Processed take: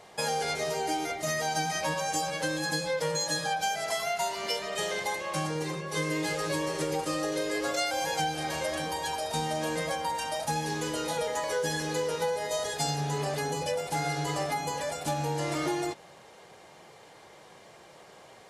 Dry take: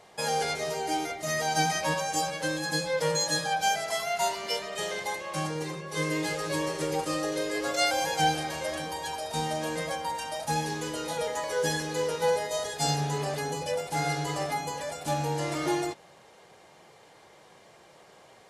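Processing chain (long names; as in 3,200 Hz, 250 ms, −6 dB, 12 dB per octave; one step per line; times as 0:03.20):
downward compressor, threshold −29 dBFS, peak gain reduction 9.5 dB
level +2.5 dB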